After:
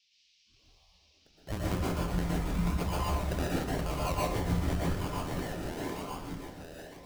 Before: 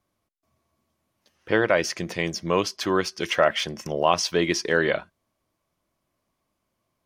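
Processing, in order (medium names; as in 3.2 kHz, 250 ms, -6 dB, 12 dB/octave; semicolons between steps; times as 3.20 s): octave divider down 2 oct, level +3 dB; elliptic band-stop 190–1100 Hz; peaking EQ 1 kHz +5 dB 0.29 oct; on a send: two-band feedback delay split 620 Hz, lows 138 ms, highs 474 ms, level -8 dB; on the sum: compression 4:1, threshold -36 dBFS, peak gain reduction 15.5 dB; decimation with a swept rate 32×, swing 60% 0.95 Hz; spectral noise reduction 26 dB; band noise 2.4–5.7 kHz -72 dBFS; plate-style reverb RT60 0.51 s, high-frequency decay 0.7×, pre-delay 105 ms, DRR -4.5 dB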